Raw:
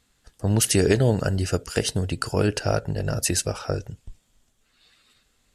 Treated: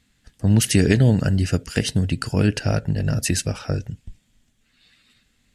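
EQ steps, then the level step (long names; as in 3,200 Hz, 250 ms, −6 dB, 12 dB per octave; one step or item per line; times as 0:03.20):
low-shelf EQ 98 Hz −7.5 dB
flat-topped bell 690 Hz −10.5 dB 2.3 octaves
high-shelf EQ 2,800 Hz −11 dB
+8.5 dB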